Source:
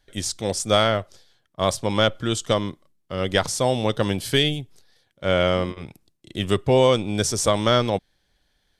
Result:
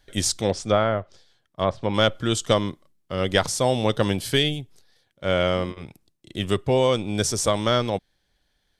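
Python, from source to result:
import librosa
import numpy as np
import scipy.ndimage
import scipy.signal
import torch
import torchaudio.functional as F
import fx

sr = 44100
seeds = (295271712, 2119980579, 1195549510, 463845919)

y = fx.env_lowpass_down(x, sr, base_hz=1700.0, full_db=-17.5, at=(0.41, 1.94))
y = fx.rider(y, sr, range_db=4, speed_s=0.5)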